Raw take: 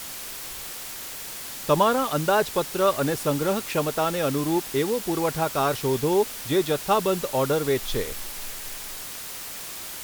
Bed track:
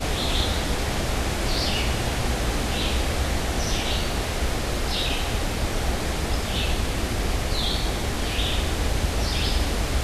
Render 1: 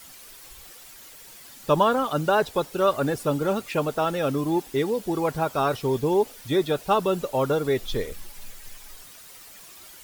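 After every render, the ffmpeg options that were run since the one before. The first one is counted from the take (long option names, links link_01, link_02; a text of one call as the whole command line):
ffmpeg -i in.wav -af "afftdn=noise_reduction=12:noise_floor=-36" out.wav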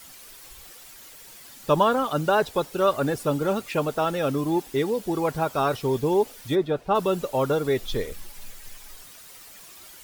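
ffmpeg -i in.wav -filter_complex "[0:a]asplit=3[link_01][link_02][link_03];[link_01]afade=type=out:start_time=6.54:duration=0.02[link_04];[link_02]lowpass=frequency=1300:poles=1,afade=type=in:start_time=6.54:duration=0.02,afade=type=out:start_time=6.94:duration=0.02[link_05];[link_03]afade=type=in:start_time=6.94:duration=0.02[link_06];[link_04][link_05][link_06]amix=inputs=3:normalize=0" out.wav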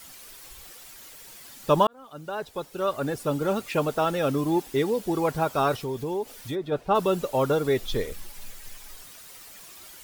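ffmpeg -i in.wav -filter_complex "[0:a]asplit=3[link_01][link_02][link_03];[link_01]afade=type=out:start_time=5.76:duration=0.02[link_04];[link_02]acompressor=threshold=-32dB:ratio=2:attack=3.2:release=140:knee=1:detection=peak,afade=type=in:start_time=5.76:duration=0.02,afade=type=out:start_time=6.71:duration=0.02[link_05];[link_03]afade=type=in:start_time=6.71:duration=0.02[link_06];[link_04][link_05][link_06]amix=inputs=3:normalize=0,asplit=2[link_07][link_08];[link_07]atrim=end=1.87,asetpts=PTS-STARTPTS,afade=type=out:start_time=1.866:duration=0.004:curve=hsin[link_09];[link_08]atrim=start=1.87,asetpts=PTS-STARTPTS,afade=type=in:duration=1.85[link_10];[link_09][link_10]concat=n=2:v=0:a=1" out.wav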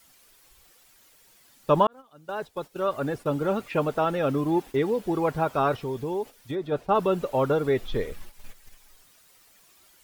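ffmpeg -i in.wav -filter_complex "[0:a]agate=range=-11dB:threshold=-36dB:ratio=16:detection=peak,acrossover=split=3100[link_01][link_02];[link_02]acompressor=threshold=-52dB:ratio=4:attack=1:release=60[link_03];[link_01][link_03]amix=inputs=2:normalize=0" out.wav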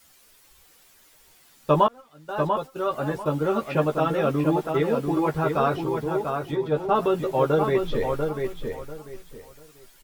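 ffmpeg -i in.wav -filter_complex "[0:a]asplit=2[link_01][link_02];[link_02]adelay=13,volume=-4dB[link_03];[link_01][link_03]amix=inputs=2:normalize=0,asplit=2[link_04][link_05];[link_05]adelay=692,lowpass=frequency=3100:poles=1,volume=-5dB,asplit=2[link_06][link_07];[link_07]adelay=692,lowpass=frequency=3100:poles=1,volume=0.24,asplit=2[link_08][link_09];[link_09]adelay=692,lowpass=frequency=3100:poles=1,volume=0.24[link_10];[link_04][link_06][link_08][link_10]amix=inputs=4:normalize=0" out.wav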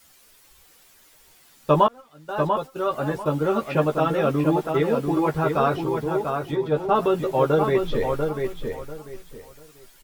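ffmpeg -i in.wav -af "volume=1.5dB" out.wav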